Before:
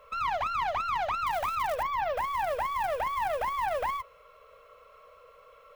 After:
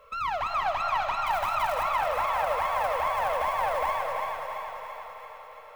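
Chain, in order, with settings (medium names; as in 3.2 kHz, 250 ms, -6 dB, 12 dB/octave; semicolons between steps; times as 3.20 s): on a send: thinning echo 337 ms, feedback 62%, high-pass 410 Hz, level -4.5 dB; on the sum: algorithmic reverb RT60 4.2 s, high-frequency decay 0.75×, pre-delay 110 ms, DRR 4 dB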